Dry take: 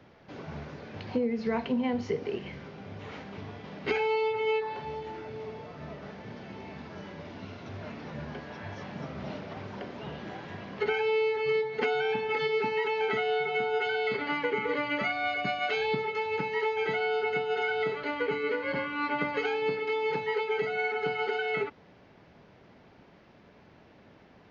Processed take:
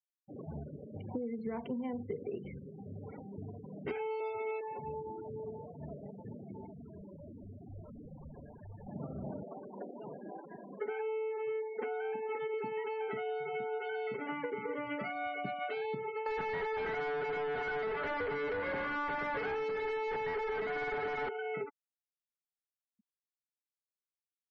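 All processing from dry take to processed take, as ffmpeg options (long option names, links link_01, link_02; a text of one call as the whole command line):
ffmpeg -i in.wav -filter_complex "[0:a]asettb=1/sr,asplit=3[link_01][link_02][link_03];[link_01]atrim=end=4.204[link_04];[link_02]atrim=start=4.2:end=4.61,asetpts=PTS-STARTPTS,afade=type=in:duration=0.004:curve=qsin,afade=type=out:start_time=0.406:duration=0.004:curve=qsin,aecho=1:1:3.1:0.98,atrim=end_sample=18081,aeval=exprs='val(0)+0.00562*sin(2*PI*660*n/s)':channel_layout=same[link_05];[link_03]atrim=start=4.606[link_06];[link_04][link_05]acrossfade=duration=0.004:curve1=hsin:curve2=qsin[link_07];[link_07][link_06]acrossfade=duration=0.004:curve1=qsin:curve2=hsin,asettb=1/sr,asplit=3[link_08][link_09][link_10];[link_08]atrim=end=6.664[link_11];[link_09]atrim=start=6.66:end=8.87,asetpts=PTS-STARTPTS,afade=type=in:duration=0.004:curve=qsin,afade=type=out:start_time=2.206:duration=0.004:curve=qsin,aeval=exprs='0.0106*(abs(mod(val(0)/0.0106+3,4)-2)-1)':channel_layout=same,asubboost=boost=2.5:cutoff=120,aecho=1:1:162:0.0708,atrim=end_sample=97461[link_12];[link_10]atrim=start=8.866[link_13];[link_11][link_12]acrossfade=duration=0.004:curve1=hsin:curve2=qsin[link_14];[link_14][link_13]acrossfade=duration=0.004:curve1=qsin:curve2=hsin,asettb=1/sr,asplit=3[link_15][link_16][link_17];[link_15]atrim=end=9.444[link_18];[link_16]atrim=start=9.44:end=12.54,asetpts=PTS-STARTPTS,afade=type=in:duration=0.004:curve=qsin,afade=type=out:start_time=3.096:duration=0.004:curve=qsin,highpass=240,lowpass=2600,asoftclip=type=hard:threshold=-21dB[link_19];[link_17]atrim=start=12.536[link_20];[link_18][link_19]acrossfade=duration=0.004:curve1=hsin:curve2=qsin[link_21];[link_21][link_20]acrossfade=duration=0.004:curve1=qsin:curve2=hsin,asettb=1/sr,asplit=3[link_22][link_23][link_24];[link_22]atrim=end=16.264[link_25];[link_23]atrim=start=16.26:end=21.29,asetpts=PTS-STARTPTS,afade=type=in:duration=0.004:curve=qsin,afade=type=out:start_time=5.026:duration=0.004:curve=qsin,asplit=2[link_26][link_27];[link_27]highpass=frequency=720:poles=1,volume=32dB,asoftclip=type=tanh:threshold=-16dB[link_28];[link_26][link_28]amix=inputs=2:normalize=0,lowpass=frequency=2400:poles=1,volume=-6dB,equalizer=frequency=1700:width_type=o:width=0.41:gain=5.5[link_29];[link_24]atrim=start=21.286[link_30];[link_25][link_29]acrossfade=duration=0.004:curve1=hsin:curve2=qsin[link_31];[link_31][link_30]acrossfade=duration=0.004:curve1=qsin:curve2=hsin,afftfilt=real='re*gte(hypot(re,im),0.02)':imag='im*gte(hypot(re,im),0.02)':win_size=1024:overlap=0.75,lowpass=frequency=1100:poles=1,acompressor=threshold=-33dB:ratio=6,volume=-1.5dB" out.wav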